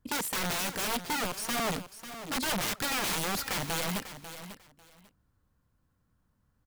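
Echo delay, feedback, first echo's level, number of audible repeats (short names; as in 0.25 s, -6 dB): 0.545 s, 19%, -12.0 dB, 2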